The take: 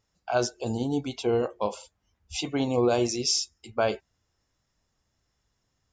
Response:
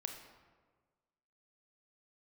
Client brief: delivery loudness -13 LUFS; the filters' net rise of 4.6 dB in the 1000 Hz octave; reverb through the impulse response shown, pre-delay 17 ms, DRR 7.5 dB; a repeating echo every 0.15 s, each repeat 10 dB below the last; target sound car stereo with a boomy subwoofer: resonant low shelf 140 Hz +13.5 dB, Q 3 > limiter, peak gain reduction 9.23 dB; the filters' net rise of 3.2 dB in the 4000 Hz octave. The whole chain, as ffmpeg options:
-filter_complex "[0:a]equalizer=f=1k:t=o:g=7,equalizer=f=4k:t=o:g=4.5,aecho=1:1:150|300|450|600:0.316|0.101|0.0324|0.0104,asplit=2[a][b];[1:a]atrim=start_sample=2205,adelay=17[c];[b][c]afir=irnorm=-1:irlink=0,volume=-6dB[d];[a][d]amix=inputs=2:normalize=0,lowshelf=f=140:t=q:w=3:g=13.5,volume=13dB,alimiter=limit=-2.5dB:level=0:latency=1"

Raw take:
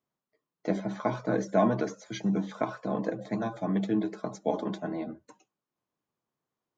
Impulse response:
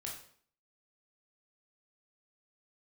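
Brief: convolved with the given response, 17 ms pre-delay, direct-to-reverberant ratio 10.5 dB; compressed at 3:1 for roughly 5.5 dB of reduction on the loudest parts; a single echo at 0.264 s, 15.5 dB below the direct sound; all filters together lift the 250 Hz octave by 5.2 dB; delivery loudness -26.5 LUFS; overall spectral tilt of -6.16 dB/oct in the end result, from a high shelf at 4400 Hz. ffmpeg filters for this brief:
-filter_complex "[0:a]equalizer=f=250:t=o:g=7,highshelf=f=4.4k:g=4,acompressor=threshold=-23dB:ratio=3,aecho=1:1:264:0.168,asplit=2[a][b];[1:a]atrim=start_sample=2205,adelay=17[c];[b][c]afir=irnorm=-1:irlink=0,volume=-9dB[d];[a][d]amix=inputs=2:normalize=0,volume=3.5dB"

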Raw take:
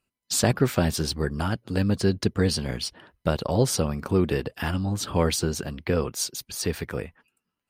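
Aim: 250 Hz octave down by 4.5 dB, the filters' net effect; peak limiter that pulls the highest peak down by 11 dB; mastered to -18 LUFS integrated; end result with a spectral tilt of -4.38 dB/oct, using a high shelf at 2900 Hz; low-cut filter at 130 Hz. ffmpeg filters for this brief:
-af "highpass=130,equalizer=f=250:t=o:g=-5.5,highshelf=f=2.9k:g=-6.5,volume=14.5dB,alimiter=limit=-5dB:level=0:latency=1"

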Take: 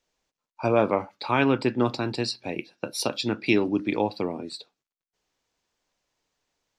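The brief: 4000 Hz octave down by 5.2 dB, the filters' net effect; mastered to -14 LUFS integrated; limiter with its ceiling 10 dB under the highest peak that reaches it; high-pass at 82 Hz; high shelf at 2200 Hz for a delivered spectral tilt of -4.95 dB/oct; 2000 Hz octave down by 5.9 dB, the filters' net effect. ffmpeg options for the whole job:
-af "highpass=82,equalizer=f=2k:t=o:g=-8,highshelf=f=2.2k:g=4.5,equalizer=f=4k:t=o:g=-9,volume=18dB,alimiter=limit=-2dB:level=0:latency=1"

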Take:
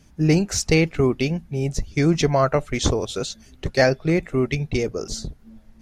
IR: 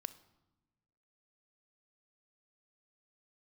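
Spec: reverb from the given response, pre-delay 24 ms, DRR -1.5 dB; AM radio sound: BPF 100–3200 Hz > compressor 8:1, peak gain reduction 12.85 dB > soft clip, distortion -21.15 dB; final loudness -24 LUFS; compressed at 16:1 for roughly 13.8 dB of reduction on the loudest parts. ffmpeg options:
-filter_complex "[0:a]acompressor=threshold=-26dB:ratio=16,asplit=2[a][b];[1:a]atrim=start_sample=2205,adelay=24[c];[b][c]afir=irnorm=-1:irlink=0,volume=4.5dB[d];[a][d]amix=inputs=2:normalize=0,highpass=100,lowpass=3.2k,acompressor=threshold=-33dB:ratio=8,asoftclip=threshold=-27dB,volume=15dB"

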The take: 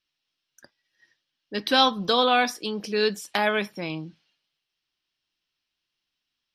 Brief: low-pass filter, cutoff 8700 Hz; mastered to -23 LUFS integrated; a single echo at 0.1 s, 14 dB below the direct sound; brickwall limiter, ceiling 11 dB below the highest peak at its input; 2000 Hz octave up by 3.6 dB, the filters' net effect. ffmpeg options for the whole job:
-af "lowpass=8.7k,equalizer=f=2k:t=o:g=5,alimiter=limit=-16dB:level=0:latency=1,aecho=1:1:100:0.2,volume=5.5dB"

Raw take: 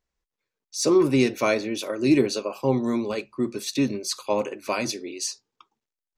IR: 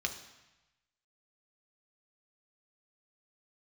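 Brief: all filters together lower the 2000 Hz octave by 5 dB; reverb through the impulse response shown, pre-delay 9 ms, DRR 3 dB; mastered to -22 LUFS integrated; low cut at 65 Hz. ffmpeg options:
-filter_complex "[0:a]highpass=65,equalizer=f=2k:t=o:g=-6.5,asplit=2[a][b];[1:a]atrim=start_sample=2205,adelay=9[c];[b][c]afir=irnorm=-1:irlink=0,volume=-6.5dB[d];[a][d]amix=inputs=2:normalize=0,volume=2dB"

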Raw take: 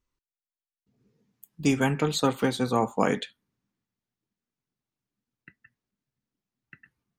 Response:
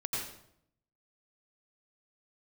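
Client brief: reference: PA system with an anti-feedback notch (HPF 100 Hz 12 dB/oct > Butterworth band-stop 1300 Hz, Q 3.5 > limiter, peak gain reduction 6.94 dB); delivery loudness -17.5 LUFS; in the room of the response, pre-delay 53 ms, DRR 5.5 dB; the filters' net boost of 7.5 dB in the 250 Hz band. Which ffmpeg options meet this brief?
-filter_complex "[0:a]equalizer=f=250:t=o:g=8.5,asplit=2[a][b];[1:a]atrim=start_sample=2205,adelay=53[c];[b][c]afir=irnorm=-1:irlink=0,volume=-9.5dB[d];[a][d]amix=inputs=2:normalize=0,highpass=100,asuperstop=centerf=1300:order=8:qfactor=3.5,volume=6dB,alimiter=limit=-7dB:level=0:latency=1"

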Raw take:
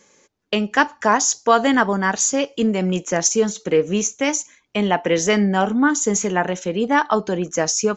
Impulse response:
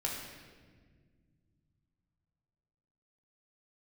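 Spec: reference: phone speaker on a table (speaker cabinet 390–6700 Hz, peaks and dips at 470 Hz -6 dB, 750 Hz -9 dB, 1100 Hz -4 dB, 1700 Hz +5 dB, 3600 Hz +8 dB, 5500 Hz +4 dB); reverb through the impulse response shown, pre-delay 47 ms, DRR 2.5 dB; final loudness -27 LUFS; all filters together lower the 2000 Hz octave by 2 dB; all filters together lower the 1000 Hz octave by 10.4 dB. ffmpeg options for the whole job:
-filter_complex "[0:a]equalizer=f=1k:t=o:g=-6.5,equalizer=f=2k:t=o:g=-4,asplit=2[a][b];[1:a]atrim=start_sample=2205,adelay=47[c];[b][c]afir=irnorm=-1:irlink=0,volume=-6dB[d];[a][d]amix=inputs=2:normalize=0,highpass=f=390:w=0.5412,highpass=f=390:w=1.3066,equalizer=f=470:t=q:w=4:g=-6,equalizer=f=750:t=q:w=4:g=-9,equalizer=f=1.1k:t=q:w=4:g=-4,equalizer=f=1.7k:t=q:w=4:g=5,equalizer=f=3.6k:t=q:w=4:g=8,equalizer=f=5.5k:t=q:w=4:g=4,lowpass=f=6.7k:w=0.5412,lowpass=f=6.7k:w=1.3066,volume=-5dB"

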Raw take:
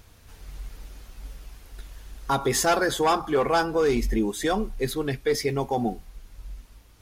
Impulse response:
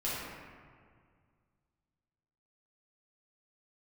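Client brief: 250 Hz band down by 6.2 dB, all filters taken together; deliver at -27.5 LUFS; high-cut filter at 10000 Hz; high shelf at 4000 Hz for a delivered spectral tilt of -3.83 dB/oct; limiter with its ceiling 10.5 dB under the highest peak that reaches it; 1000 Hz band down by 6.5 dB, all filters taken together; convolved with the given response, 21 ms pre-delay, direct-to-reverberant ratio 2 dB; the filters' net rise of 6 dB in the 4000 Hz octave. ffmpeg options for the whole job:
-filter_complex "[0:a]lowpass=10k,equalizer=f=250:t=o:g=-8,equalizer=f=1k:t=o:g=-9,highshelf=f=4k:g=4,equalizer=f=4k:t=o:g=5.5,alimiter=limit=-19.5dB:level=0:latency=1,asplit=2[a][b];[1:a]atrim=start_sample=2205,adelay=21[c];[b][c]afir=irnorm=-1:irlink=0,volume=-8dB[d];[a][d]amix=inputs=2:normalize=0"

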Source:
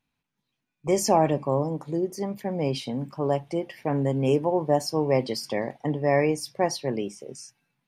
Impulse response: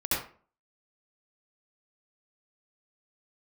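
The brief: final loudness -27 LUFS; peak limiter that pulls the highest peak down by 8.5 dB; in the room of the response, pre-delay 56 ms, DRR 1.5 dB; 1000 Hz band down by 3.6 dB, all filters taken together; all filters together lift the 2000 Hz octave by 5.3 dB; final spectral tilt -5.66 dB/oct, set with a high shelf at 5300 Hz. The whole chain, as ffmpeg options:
-filter_complex "[0:a]equalizer=f=1k:t=o:g=-6.5,equalizer=f=2k:t=o:g=8,highshelf=f=5.3k:g=-4.5,alimiter=limit=-18.5dB:level=0:latency=1,asplit=2[a][b];[1:a]atrim=start_sample=2205,adelay=56[c];[b][c]afir=irnorm=-1:irlink=0,volume=-11dB[d];[a][d]amix=inputs=2:normalize=0"

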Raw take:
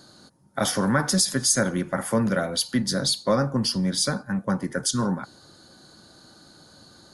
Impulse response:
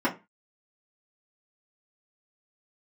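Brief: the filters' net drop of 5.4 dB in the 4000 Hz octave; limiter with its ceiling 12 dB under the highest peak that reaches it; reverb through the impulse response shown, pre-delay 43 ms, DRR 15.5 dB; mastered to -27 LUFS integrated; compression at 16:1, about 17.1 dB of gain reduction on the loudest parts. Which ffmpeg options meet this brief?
-filter_complex "[0:a]equalizer=f=4k:t=o:g=-7,acompressor=threshold=-35dB:ratio=16,alimiter=level_in=8.5dB:limit=-24dB:level=0:latency=1,volume=-8.5dB,asplit=2[a][b];[1:a]atrim=start_sample=2205,adelay=43[c];[b][c]afir=irnorm=-1:irlink=0,volume=-28dB[d];[a][d]amix=inputs=2:normalize=0,volume=15.5dB"

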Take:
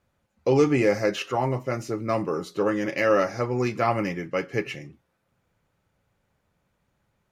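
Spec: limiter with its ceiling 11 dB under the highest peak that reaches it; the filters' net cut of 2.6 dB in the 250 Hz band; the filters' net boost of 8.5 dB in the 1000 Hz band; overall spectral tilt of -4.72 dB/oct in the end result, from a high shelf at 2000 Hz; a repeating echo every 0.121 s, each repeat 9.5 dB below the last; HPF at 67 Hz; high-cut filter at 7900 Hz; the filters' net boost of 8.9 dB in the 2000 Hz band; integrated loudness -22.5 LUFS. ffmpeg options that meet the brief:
-af "highpass=67,lowpass=7.9k,equalizer=f=250:t=o:g=-4.5,equalizer=f=1k:t=o:g=8.5,highshelf=f=2k:g=6.5,equalizer=f=2k:t=o:g=4.5,alimiter=limit=-13dB:level=0:latency=1,aecho=1:1:121|242|363|484:0.335|0.111|0.0365|0.012,volume=2dB"

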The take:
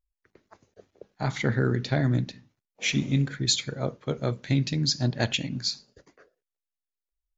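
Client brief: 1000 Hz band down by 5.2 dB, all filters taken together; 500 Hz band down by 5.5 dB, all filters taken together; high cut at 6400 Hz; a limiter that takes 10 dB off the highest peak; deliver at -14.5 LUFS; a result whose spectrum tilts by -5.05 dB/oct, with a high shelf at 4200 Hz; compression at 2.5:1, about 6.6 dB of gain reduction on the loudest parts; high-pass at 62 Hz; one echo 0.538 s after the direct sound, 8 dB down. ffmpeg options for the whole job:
-af "highpass=62,lowpass=6.4k,equalizer=f=500:t=o:g=-6,equalizer=f=1k:t=o:g=-4.5,highshelf=f=4.2k:g=-8,acompressor=threshold=-30dB:ratio=2.5,alimiter=level_in=4dB:limit=-24dB:level=0:latency=1,volume=-4dB,aecho=1:1:538:0.398,volume=23.5dB"

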